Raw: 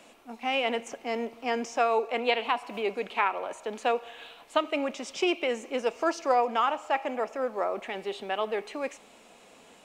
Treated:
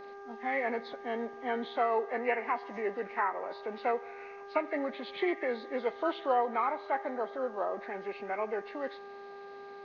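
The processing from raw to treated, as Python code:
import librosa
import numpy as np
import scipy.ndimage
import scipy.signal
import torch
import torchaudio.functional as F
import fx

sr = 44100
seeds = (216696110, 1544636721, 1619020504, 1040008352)

y = fx.freq_compress(x, sr, knee_hz=1200.0, ratio=1.5)
y = fx.dmg_buzz(y, sr, base_hz=400.0, harmonics=4, level_db=-43.0, tilt_db=-5, odd_only=False)
y = y * librosa.db_to_amplitude(-4.0)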